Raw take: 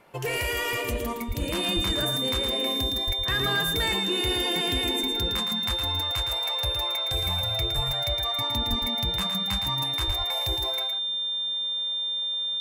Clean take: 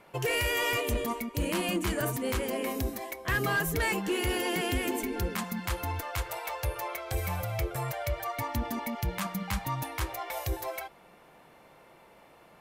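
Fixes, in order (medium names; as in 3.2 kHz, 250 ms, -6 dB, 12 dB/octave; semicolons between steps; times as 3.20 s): band-stop 3.6 kHz, Q 30; de-plosive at 1.27/1.75/3.06/7.75/8.69/10.06 s; inverse comb 113 ms -6.5 dB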